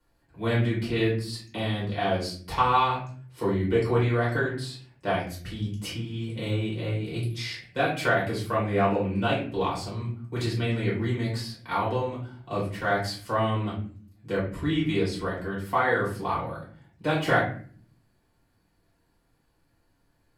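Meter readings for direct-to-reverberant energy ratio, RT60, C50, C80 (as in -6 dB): -8.0 dB, 0.45 s, 5.0 dB, 10.0 dB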